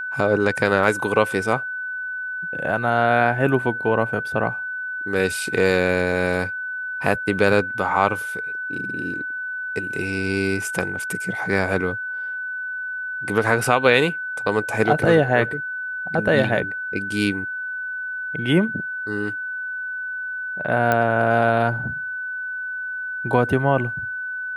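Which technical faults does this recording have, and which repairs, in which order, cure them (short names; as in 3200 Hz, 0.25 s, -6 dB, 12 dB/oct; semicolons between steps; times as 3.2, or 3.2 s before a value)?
tone 1500 Hz -26 dBFS
20.92 pop -7 dBFS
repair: de-click; notch 1500 Hz, Q 30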